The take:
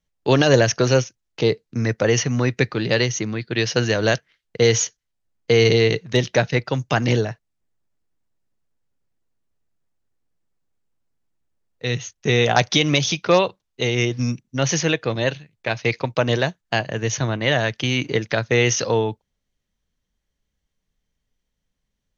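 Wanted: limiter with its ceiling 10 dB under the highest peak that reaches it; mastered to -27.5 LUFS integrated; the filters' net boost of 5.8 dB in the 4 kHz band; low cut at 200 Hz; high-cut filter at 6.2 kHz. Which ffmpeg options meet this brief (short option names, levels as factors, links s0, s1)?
-af "highpass=200,lowpass=6200,equalizer=f=4000:t=o:g=8,volume=0.562,alimiter=limit=0.178:level=0:latency=1"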